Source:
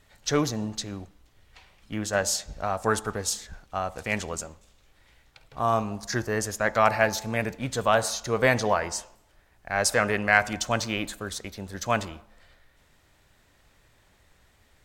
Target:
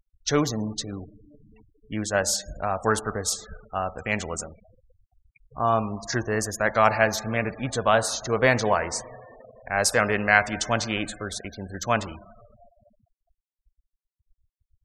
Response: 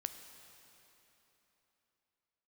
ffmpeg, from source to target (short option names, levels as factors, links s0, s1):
-filter_complex "[0:a]asplit=2[s0][s1];[1:a]atrim=start_sample=2205,asetrate=29988,aresample=44100[s2];[s1][s2]afir=irnorm=-1:irlink=0,volume=0.376[s3];[s0][s3]amix=inputs=2:normalize=0,afftfilt=real='re*gte(hypot(re,im),0.0158)':imag='im*gte(hypot(re,im),0.0158)':win_size=1024:overlap=0.75,volume=0.891"